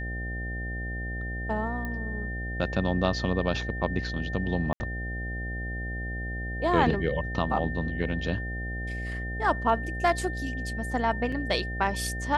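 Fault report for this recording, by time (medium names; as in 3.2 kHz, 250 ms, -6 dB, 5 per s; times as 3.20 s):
buzz 60 Hz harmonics 13 -34 dBFS
whine 1.8 kHz -36 dBFS
1.85 s: pop -22 dBFS
4.73–4.80 s: dropout 70 ms
11.32 s: dropout 4.3 ms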